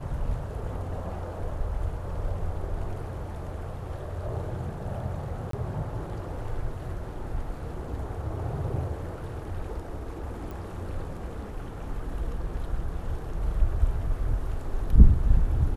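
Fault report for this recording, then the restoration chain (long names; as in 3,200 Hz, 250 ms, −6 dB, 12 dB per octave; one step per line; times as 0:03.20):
0:05.51–0:05.53: drop-out 23 ms
0:10.51: click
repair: click removal
repair the gap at 0:05.51, 23 ms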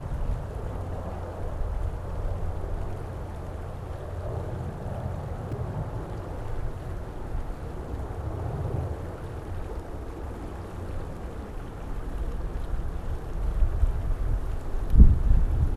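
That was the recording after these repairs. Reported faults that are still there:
none of them is left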